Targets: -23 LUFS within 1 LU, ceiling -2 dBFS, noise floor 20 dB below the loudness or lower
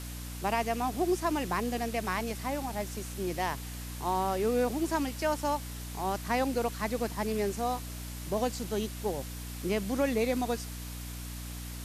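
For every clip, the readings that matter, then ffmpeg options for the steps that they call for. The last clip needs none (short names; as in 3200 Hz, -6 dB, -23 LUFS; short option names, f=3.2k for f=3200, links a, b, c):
hum 60 Hz; harmonics up to 300 Hz; hum level -38 dBFS; noise floor -40 dBFS; noise floor target -53 dBFS; loudness -32.5 LUFS; peak -15.5 dBFS; loudness target -23.0 LUFS
-> -af "bandreject=f=60:t=h:w=4,bandreject=f=120:t=h:w=4,bandreject=f=180:t=h:w=4,bandreject=f=240:t=h:w=4,bandreject=f=300:t=h:w=4"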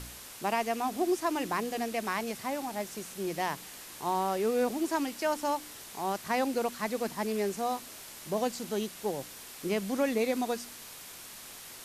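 hum none; noise floor -47 dBFS; noise floor target -53 dBFS
-> -af "afftdn=nr=6:nf=-47"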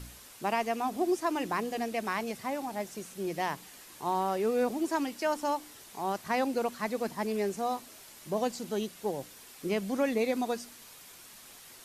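noise floor -52 dBFS; noise floor target -53 dBFS
-> -af "afftdn=nr=6:nf=-52"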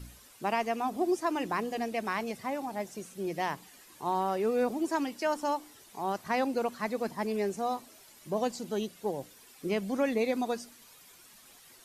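noise floor -56 dBFS; loudness -32.5 LUFS; peak -16.0 dBFS; loudness target -23.0 LUFS
-> -af "volume=9.5dB"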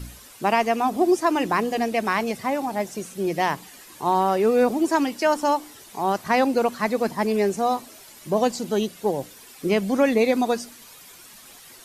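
loudness -23.0 LUFS; peak -6.5 dBFS; noise floor -47 dBFS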